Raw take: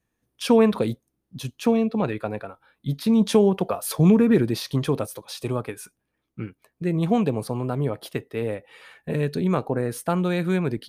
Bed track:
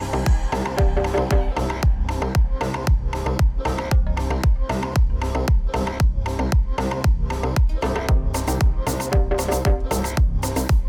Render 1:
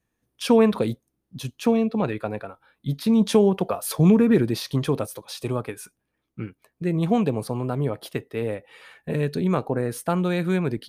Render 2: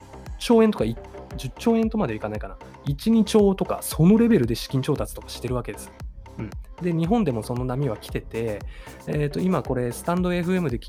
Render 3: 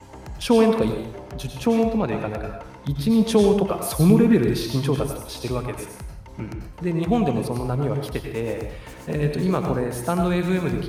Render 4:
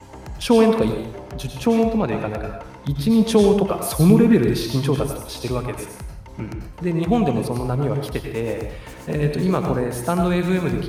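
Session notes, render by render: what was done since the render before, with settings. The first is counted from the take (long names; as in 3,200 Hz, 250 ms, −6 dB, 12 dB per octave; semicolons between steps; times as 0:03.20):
no processing that can be heard
mix in bed track −19 dB
dense smooth reverb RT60 0.57 s, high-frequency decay 1×, pre-delay 80 ms, DRR 4 dB
level +2 dB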